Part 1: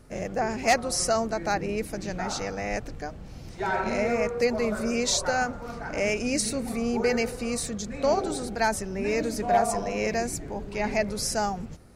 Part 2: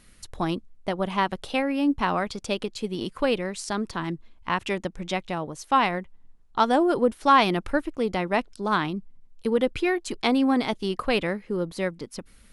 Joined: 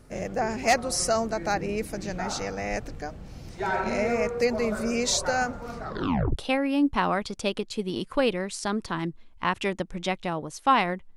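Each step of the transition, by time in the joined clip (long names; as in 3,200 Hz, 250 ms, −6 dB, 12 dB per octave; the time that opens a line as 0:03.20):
part 1
0:05.79: tape stop 0.57 s
0:06.36: continue with part 2 from 0:01.41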